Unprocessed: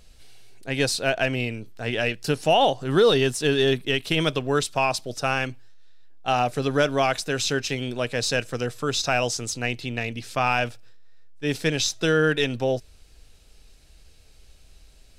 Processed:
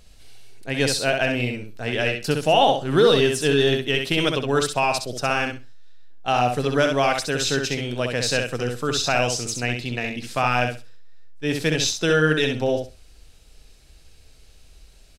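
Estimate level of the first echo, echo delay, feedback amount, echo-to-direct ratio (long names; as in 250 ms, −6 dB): −5.0 dB, 65 ms, 18%, −5.0 dB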